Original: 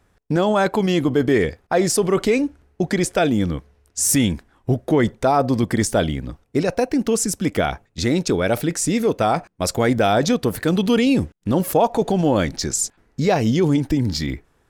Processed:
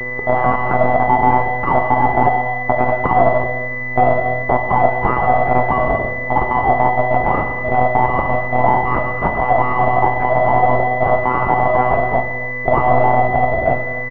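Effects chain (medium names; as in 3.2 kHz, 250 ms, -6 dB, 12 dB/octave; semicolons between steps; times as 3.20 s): high-pass 60 Hz; hum notches 60/120/180/240/300 Hz; comb 4.6 ms, depth 56%; in parallel at -0.5 dB: compression, threshold -24 dBFS, peak gain reduction 13.5 dB; on the sum: frequency shift +430 Hz; granulator 100 ms, grains 20 per s, spray 20 ms, pitch spread up and down by 0 st; mains buzz 400 Hz, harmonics 4, -35 dBFS -6 dB/octave; monotone LPC vocoder at 8 kHz 120 Hz; on a send at -4.5 dB: reverberation, pre-delay 3 ms; on the sum: speed mistake 24 fps film run at 25 fps; loudness maximiser +6.5 dB; class-D stage that switches slowly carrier 2 kHz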